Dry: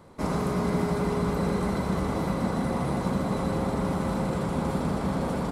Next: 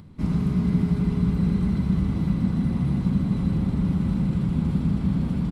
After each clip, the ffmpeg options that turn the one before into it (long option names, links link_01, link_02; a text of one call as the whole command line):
ffmpeg -i in.wav -af "firequalizer=gain_entry='entry(170,0);entry(500,-22);entry(2800,-10);entry(6500,-19)':delay=0.05:min_phase=1,acompressor=mode=upward:threshold=-49dB:ratio=2.5,volume=7.5dB" out.wav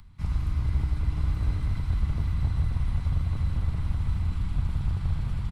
ffmpeg -i in.wav -filter_complex "[0:a]aecho=1:1:964:0.531,acrossover=split=400|740[link_01][link_02][link_03];[link_01]afreqshift=-110[link_04];[link_02]acrusher=bits=5:mix=0:aa=0.5[link_05];[link_04][link_05][link_03]amix=inputs=3:normalize=0,volume=-3dB" out.wav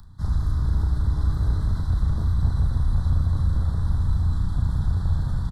ffmpeg -i in.wav -filter_complex "[0:a]asuperstop=centerf=2500:order=8:qfactor=1.5,asplit=2[link_01][link_02];[link_02]adelay=34,volume=-5.5dB[link_03];[link_01][link_03]amix=inputs=2:normalize=0,asplit=2[link_04][link_05];[link_05]asoftclip=type=tanh:threshold=-20.5dB,volume=-4.5dB[link_06];[link_04][link_06]amix=inputs=2:normalize=0" out.wav